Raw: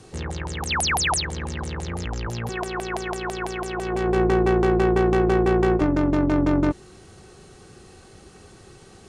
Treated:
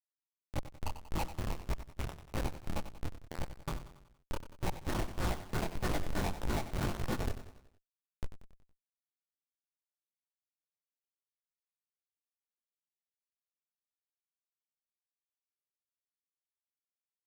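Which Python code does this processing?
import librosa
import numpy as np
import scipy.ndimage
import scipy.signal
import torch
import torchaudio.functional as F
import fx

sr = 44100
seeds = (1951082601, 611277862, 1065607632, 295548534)

p1 = scipy.ndimage.gaussian_filter1d(x, 3.9, mode='constant')
p2 = p1 + 0.5 * np.pad(p1, (int(3.4 * sr / 1000.0), 0))[:len(p1)]
p3 = fx.quant_dither(p2, sr, seeds[0], bits=8, dither='none')
p4 = fx.over_compress(p3, sr, threshold_db=-29.0, ratio=-1.0)
p5 = scipy.signal.sosfilt(scipy.signal.butter(4, 620.0, 'highpass', fs=sr, output='sos'), p4)
p6 = fx.tilt_shelf(p5, sr, db=4.0, hz=880.0)
p7 = fx.echo_diffused(p6, sr, ms=549, feedback_pct=54, wet_db=-7.0)
p8 = fx.stretch_vocoder(p7, sr, factor=1.9)
p9 = fx.schmitt(p8, sr, flips_db=-25.0)
p10 = p9 + fx.echo_feedback(p9, sr, ms=93, feedback_pct=50, wet_db=-12.0, dry=0)
p11 = fx.detune_double(p10, sr, cents=59)
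y = p11 * librosa.db_to_amplitude(9.0)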